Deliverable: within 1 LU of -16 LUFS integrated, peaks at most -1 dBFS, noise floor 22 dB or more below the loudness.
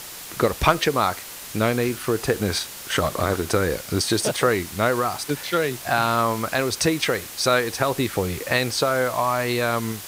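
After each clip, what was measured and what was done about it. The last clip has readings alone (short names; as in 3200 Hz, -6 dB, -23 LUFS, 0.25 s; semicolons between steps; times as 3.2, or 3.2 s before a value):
noise floor -38 dBFS; noise floor target -45 dBFS; loudness -22.5 LUFS; peak -4.0 dBFS; loudness target -16.0 LUFS
-> denoiser 7 dB, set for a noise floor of -38 dBFS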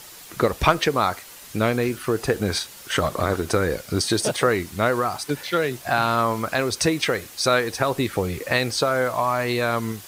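noise floor -43 dBFS; noise floor target -45 dBFS
-> denoiser 6 dB, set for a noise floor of -43 dBFS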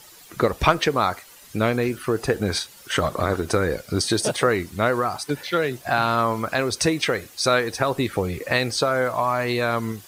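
noise floor -47 dBFS; loudness -23.0 LUFS; peak -4.5 dBFS; loudness target -16.0 LUFS
-> gain +7 dB; limiter -1 dBFS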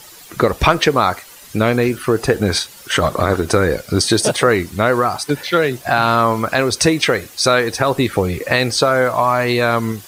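loudness -16.5 LUFS; peak -1.0 dBFS; noise floor -40 dBFS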